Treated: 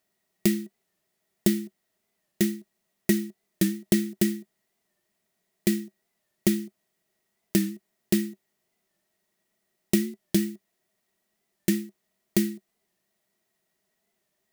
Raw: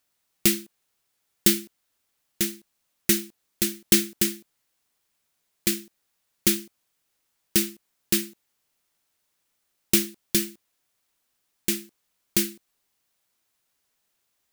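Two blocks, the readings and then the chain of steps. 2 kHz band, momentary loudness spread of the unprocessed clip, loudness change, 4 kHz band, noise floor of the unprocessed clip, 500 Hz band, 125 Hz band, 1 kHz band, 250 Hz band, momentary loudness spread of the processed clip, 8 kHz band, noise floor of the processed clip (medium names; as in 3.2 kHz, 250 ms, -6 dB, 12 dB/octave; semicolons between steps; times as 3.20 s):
-4.5 dB, 10 LU, -3.0 dB, -9.0 dB, -76 dBFS, +2.0 dB, +5.5 dB, no reading, +4.0 dB, 14 LU, -9.0 dB, -78 dBFS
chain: compression 6:1, threshold -22 dBFS, peak gain reduction 9.5 dB; small resonant body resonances 200/370/630/1900 Hz, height 16 dB, ringing for 55 ms; warped record 45 rpm, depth 100 cents; trim -4 dB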